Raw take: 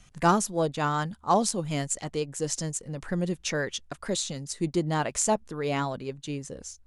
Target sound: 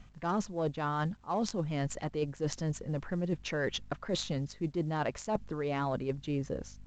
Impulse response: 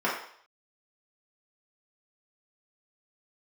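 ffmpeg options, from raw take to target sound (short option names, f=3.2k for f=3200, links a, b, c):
-af "adynamicsmooth=sensitivity=1:basefreq=2.7k,aeval=exprs='val(0)+0.00141*(sin(2*PI*50*n/s)+sin(2*PI*2*50*n/s)/2+sin(2*PI*3*50*n/s)/3+sin(2*PI*4*50*n/s)/4+sin(2*PI*5*50*n/s)/5)':c=same,areverse,acompressor=threshold=-34dB:ratio=12,areverse,volume=5dB" -ar 16000 -c:a pcm_alaw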